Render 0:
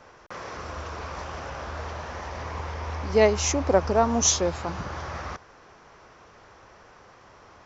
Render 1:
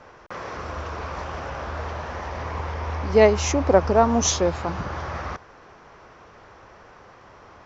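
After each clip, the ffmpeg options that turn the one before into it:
-af "lowpass=f=3400:p=1,volume=1.58"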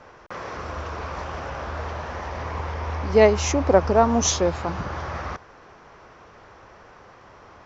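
-af anull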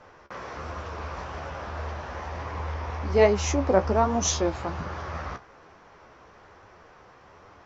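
-af "flanger=delay=9.6:depth=6.8:regen=43:speed=1.2:shape=triangular"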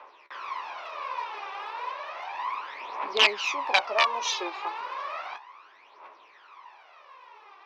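-af "aeval=exprs='(mod(3.55*val(0)+1,2)-1)/3.55':c=same,highpass=f=460:w=0.5412,highpass=f=460:w=1.3066,equalizer=f=490:t=q:w=4:g=-9,equalizer=f=710:t=q:w=4:g=-5,equalizer=f=1000:t=q:w=4:g=8,equalizer=f=1500:t=q:w=4:g=-5,equalizer=f=2500:t=q:w=4:g=8,equalizer=f=3700:t=q:w=4:g=5,lowpass=f=4800:w=0.5412,lowpass=f=4800:w=1.3066,aphaser=in_gain=1:out_gain=1:delay=2.6:decay=0.66:speed=0.33:type=triangular,volume=0.794"

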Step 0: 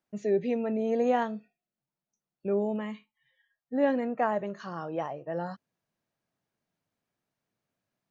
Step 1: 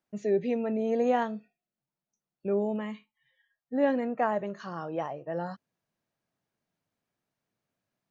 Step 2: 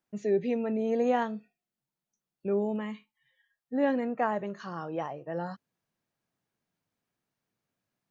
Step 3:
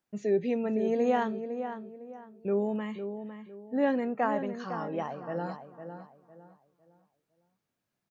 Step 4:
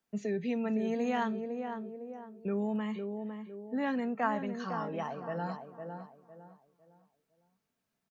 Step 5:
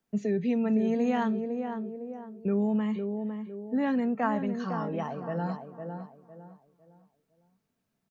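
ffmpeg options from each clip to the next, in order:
-af anull
-af "equalizer=f=620:t=o:w=0.36:g=-3.5"
-filter_complex "[0:a]asplit=2[s0][s1];[s1]adelay=506,lowpass=f=1900:p=1,volume=0.376,asplit=2[s2][s3];[s3]adelay=506,lowpass=f=1900:p=1,volume=0.32,asplit=2[s4][s5];[s5]adelay=506,lowpass=f=1900:p=1,volume=0.32,asplit=2[s6][s7];[s7]adelay=506,lowpass=f=1900:p=1,volume=0.32[s8];[s0][s2][s4][s6][s8]amix=inputs=5:normalize=0"
-filter_complex "[0:a]aecho=1:1:4.5:0.35,acrossover=split=230|800[s0][s1][s2];[s1]acompressor=threshold=0.0112:ratio=6[s3];[s0][s3][s2]amix=inputs=3:normalize=0"
-af "lowshelf=f=460:g=8"

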